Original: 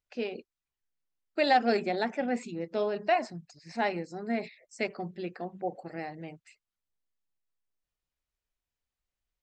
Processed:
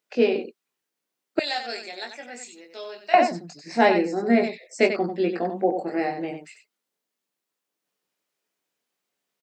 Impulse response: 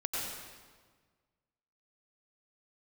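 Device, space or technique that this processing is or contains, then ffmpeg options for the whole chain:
slapback doubling: -filter_complex "[0:a]highpass=f=180:w=0.5412,highpass=f=180:w=1.3066,equalizer=f=400:t=o:w=1.2:g=4.5,asplit=3[s0][s1][s2];[s1]adelay=21,volume=0.596[s3];[s2]adelay=93,volume=0.422[s4];[s0][s3][s4]amix=inputs=3:normalize=0,asettb=1/sr,asplit=3[s5][s6][s7];[s5]atrim=end=1.394[s8];[s6]atrim=start=1.39:end=3.14,asetpts=PTS-STARTPTS,afade=t=in:d=0.004:c=qsin,afade=t=out:st=1.746:d=0.004:c=qsin,aderivative[s9];[s7]atrim=start=3.136[s10];[s8][s9]acrossfade=d=0.004:c1=hsin:c2=qsin[s11];[s11][s10]acrossfade=d=0.004:c1=qsin:c2=hsin,volume=2.66"

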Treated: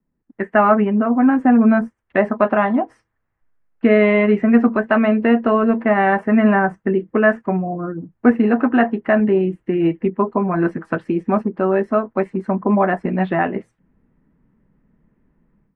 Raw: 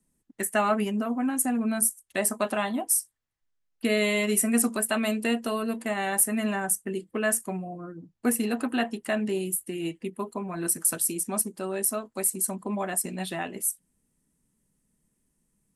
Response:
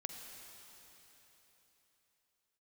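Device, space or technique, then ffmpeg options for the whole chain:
action camera in a waterproof case: -filter_complex "[0:a]asettb=1/sr,asplit=3[s0][s1][s2];[s0]atrim=end=4.124[s3];[s1]atrim=start=4.12:end=5.21,asetpts=PTS-STARTPTS,afade=t=in:d=0.004:c=qsin,afade=t=out:st=1.086:d=0.004:c=qsin,lowpass=f=7300:w=0.5412,lowpass=f=7300:w=1.3066[s4];[s2]atrim=start=5.206[s5];[s3][s4]acrossfade=d=0.004:c1=hsin:c2=qsin[s6];[s6][s5]acrossfade=d=0.004:c1=qsin:c2=hsin,lowpass=f=1900:w=0.5412,lowpass=f=1900:w=1.3066,dynaudnorm=f=220:g=3:m=5.62" -ar 48000 -c:a aac -b:a 96k

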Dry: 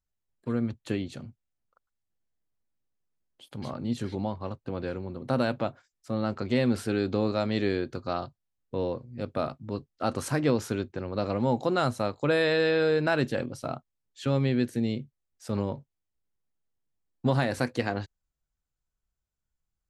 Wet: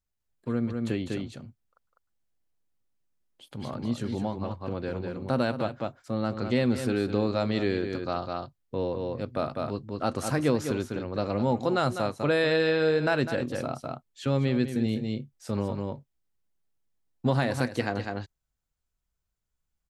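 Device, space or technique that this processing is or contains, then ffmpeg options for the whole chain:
ducked delay: -filter_complex "[0:a]asplit=3[s0][s1][s2];[s1]adelay=201,volume=0.794[s3];[s2]apad=whole_len=886250[s4];[s3][s4]sidechaincompress=threshold=0.0282:ratio=10:attack=6.1:release=235[s5];[s0][s5]amix=inputs=2:normalize=0,asettb=1/sr,asplit=3[s6][s7][s8];[s6]atrim=end=14.834[s9];[s7]atrim=start=14.83:end=15.51,asetpts=PTS-STARTPTS,afade=t=in:d=0.004:c=qsin,afade=t=out:st=0.676:d=0.004:c=qsin,asplit=2[s10][s11];[s11]adelay=28,volume=0.316[s12];[s10][s12]amix=inputs=2:normalize=0,atrim=end_sample=29988[s13];[s8]atrim=start=15.506[s14];[s9][s13]acrossfade=d=0.004:c1=hsin:c2=qsin[s15];[s15][s14]acrossfade=d=0.004:c1=qsin:c2=hsin"

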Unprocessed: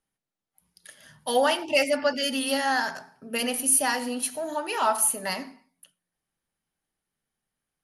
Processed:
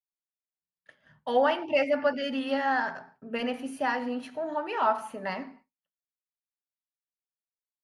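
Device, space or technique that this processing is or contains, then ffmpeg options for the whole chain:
hearing-loss simulation: -af "lowpass=2100,agate=range=0.0224:threshold=0.00355:ratio=3:detection=peak,volume=0.891"

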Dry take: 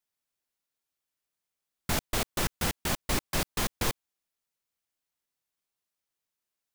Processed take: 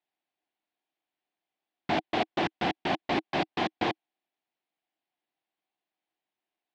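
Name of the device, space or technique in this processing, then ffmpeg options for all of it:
kitchen radio: -af "highpass=190,equalizer=f=320:t=q:w=4:g=8,equalizer=f=500:t=q:w=4:g=-3,equalizer=f=740:t=q:w=4:g=10,equalizer=f=1300:t=q:w=4:g=-6,lowpass=f=3600:w=0.5412,lowpass=f=3600:w=1.3066,volume=1.33"

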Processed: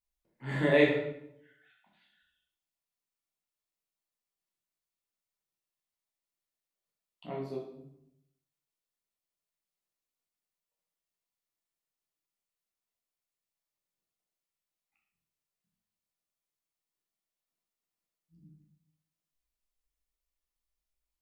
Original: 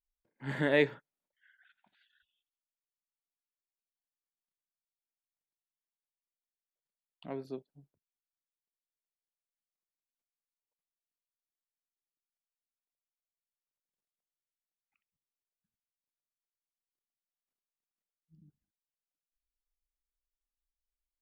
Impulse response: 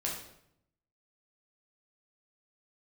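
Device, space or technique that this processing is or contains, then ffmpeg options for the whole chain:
bathroom: -filter_complex "[0:a]bandreject=f=1600:w=11[s0];[1:a]atrim=start_sample=2205[s1];[s0][s1]afir=irnorm=-1:irlink=0"

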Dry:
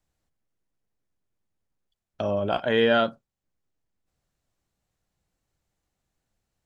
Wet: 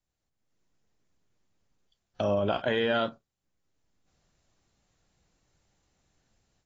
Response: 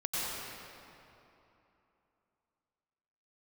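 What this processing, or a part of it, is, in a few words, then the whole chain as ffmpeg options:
low-bitrate web radio: -af "highshelf=f=4000:g=4.5,dynaudnorm=f=300:g=3:m=5.31,alimiter=limit=0.398:level=0:latency=1:release=145,volume=0.376" -ar 22050 -c:a aac -b:a 24k

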